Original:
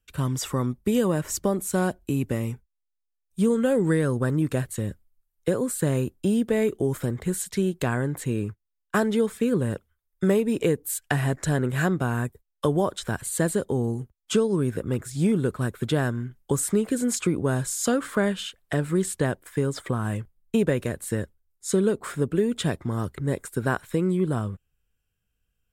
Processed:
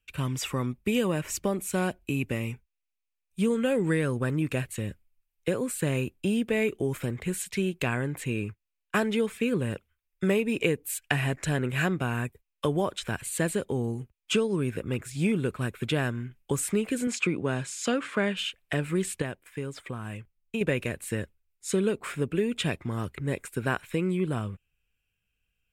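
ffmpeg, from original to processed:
-filter_complex "[0:a]asettb=1/sr,asplit=3[a][b][c];[a]atrim=end=17.074[d];[b]atrim=start=17.07:end=18.37,asetpts=PTS-STARTPTS,afade=t=in:d=0.004:c=qsin,afade=t=out:st=1.296:d=0.004:c=qsin,highpass=120,lowpass=6.9k[e];[c]atrim=start=18.366[f];[d][e]acrossfade=d=0.004:c1=hsin:c2=qsin[g];[g][f]acrossfade=d=0.004:c1=qsin:c2=hsin,asplit=3[h][i][j];[h]atrim=end=19.222[k];[i]atrim=start=19.218:end=20.612,asetpts=PTS-STARTPTS,volume=-6dB[l];[j]atrim=start=20.608[m];[k][l]acrossfade=d=0.004:c1=hsin:c2=hsin[n];[n][m]acrossfade=d=0.004:c1=hsin:c2=hsin,equalizer=f=2.5k:w=2.3:g=13.5,volume=-4dB"

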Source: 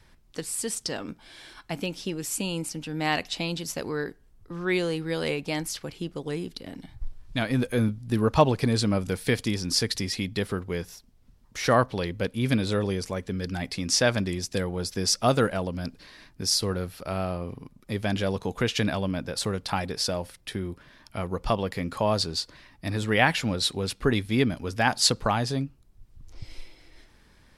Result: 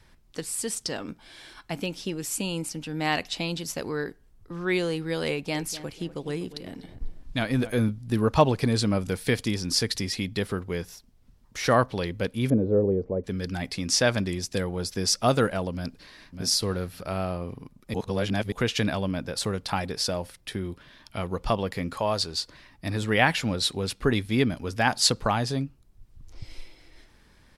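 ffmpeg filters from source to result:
-filter_complex "[0:a]asettb=1/sr,asplit=3[a][b][c];[a]atrim=end=5.304[d];[b]atrim=start=5.3:end=7.75,asetpts=PTS-STARTPTS,afade=t=in:d=0.004:c=qsin,afade=t=out:st=2.446:d=0.004:c=qsin,asplit=2[e][f];[f]adelay=246,lowpass=f=2k:p=1,volume=-13.5dB,asplit=2[g][h];[h]adelay=246,lowpass=f=2k:p=1,volume=0.36,asplit=2[i][j];[j]adelay=246,lowpass=f=2k:p=1,volume=0.36[k];[e][g][i][k]amix=inputs=4:normalize=0,atrim=end_sample=108045[l];[c]atrim=start=7.746[m];[d][l]acrossfade=d=0.004:c1=hsin:c2=qsin[n];[n][m]acrossfade=d=0.004:c1=qsin:c2=hsin,asettb=1/sr,asplit=3[o][p][q];[o]atrim=end=12.504[r];[p]atrim=start=12.5:end=13.24,asetpts=PTS-STARTPTS,afade=t=in:d=0.004:c=qsin,afade=t=out:st=0.736:d=0.004:c=qsin,lowpass=f=480:t=q:w=2.2[s];[q]atrim=start=13.236[t];[r][s]acrossfade=d=0.004:c1=hsin:c2=qsin[u];[u][t]acrossfade=d=0.004:c1=qsin:c2=hsin,asplit=2[v][w];[w]afade=t=in:st=15.72:d=0.01,afade=t=out:st=16.41:d=0.01,aecho=0:1:600|1200:0.398107|0.0597161[x];[v][x]amix=inputs=2:normalize=0,asettb=1/sr,asplit=3[y][z][aa];[y]atrim=end=20.644[ab];[z]atrim=start=20.64:end=21.44,asetpts=PTS-STARTPTS,afade=t=in:d=0.004:c=qsin,afade=t=out:st=0.796:d=0.004:c=qsin,equalizer=f=3.4k:t=o:w=0.77:g=5.5[ac];[aa]atrim=start=21.436[ad];[ab][ac]acrossfade=d=0.004:c1=hsin:c2=qsin[ae];[ae][ad]acrossfade=d=0.004:c1=qsin:c2=hsin,asettb=1/sr,asplit=3[af][ag][ah];[af]atrim=end=21.954[ai];[ag]atrim=start=21.95:end=22.39,asetpts=PTS-STARTPTS,afade=t=in:d=0.004:c=qsin,afade=t=out:st=0.436:d=0.004:c=qsin,equalizer=f=170:t=o:w=2.5:g=-6[aj];[ah]atrim=start=22.386[ak];[ai][aj]acrossfade=d=0.004:c1=hsin:c2=qsin[al];[al][ak]acrossfade=d=0.004:c1=qsin:c2=hsin,asplit=3[am][an][ao];[am]atrim=end=17.942[ap];[an]atrim=start=17.938:end=18.522,asetpts=PTS-STARTPTS,areverse[aq];[ao]atrim=start=18.518[ar];[ap][aq]acrossfade=d=0.004:c1=hsin:c2=hsin[as];[as][ar]acrossfade=d=0.004:c1=hsin:c2=hsin"

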